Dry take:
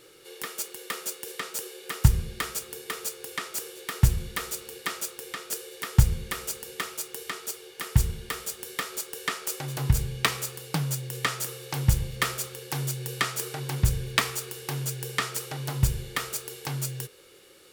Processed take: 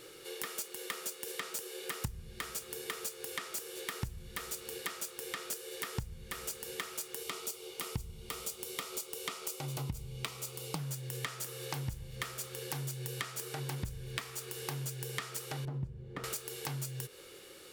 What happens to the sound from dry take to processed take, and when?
7.23–10.79 bell 1700 Hz -14 dB 0.26 oct
15.65–16.24 band-pass 180 Hz, Q 0.58
whole clip: compressor 12:1, threshold -37 dBFS; gain +1.5 dB

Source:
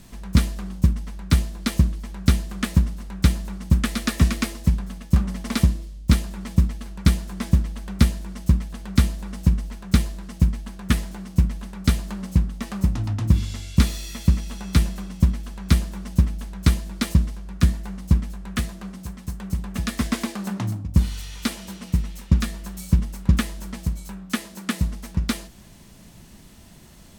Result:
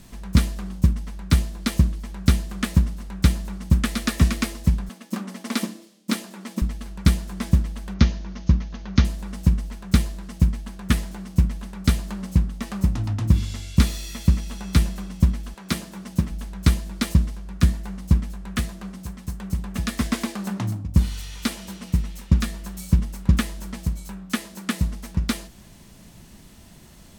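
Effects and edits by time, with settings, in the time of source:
4.89–6.62 brick-wall FIR high-pass 190 Hz
7.94–9.05 steep low-pass 6600 Hz 96 dB/oct
15.53–16.3 HPF 300 Hz -> 90 Hz

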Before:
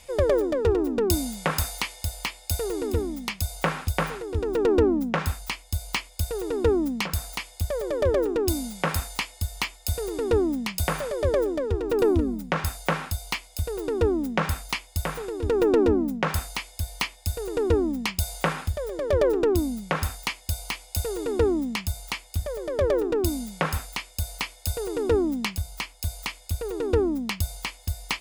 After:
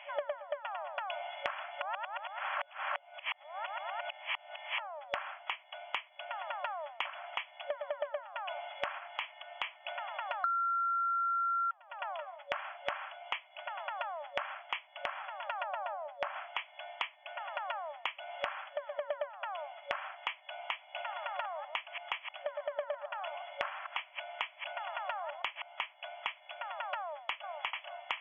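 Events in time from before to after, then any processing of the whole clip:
1.81–4.79 reverse
8.98–9.75 compressor 3:1, threshold -27 dBFS
10.44–11.71 bleep 1370 Hz -8 dBFS
15.64–16.36 tilt shelf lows +5.5 dB, about 820 Hz
20.87–25.64 reverse delay 0.111 s, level -11.5 dB
26.99–27.55 echo throw 0.44 s, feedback 25%, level -3.5 dB
whole clip: FFT band-pass 570–3400 Hz; compressor 6:1, threshold -41 dBFS; gain +6 dB

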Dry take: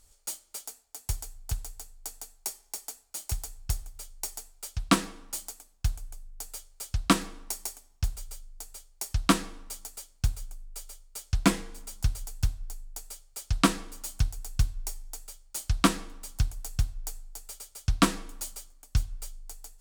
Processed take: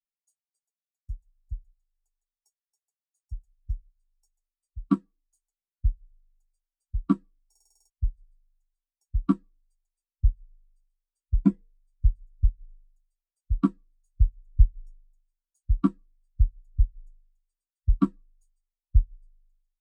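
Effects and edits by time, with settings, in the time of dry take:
7.5 stutter in place 0.05 s, 8 plays
whole clip: spectral expander 2.5:1

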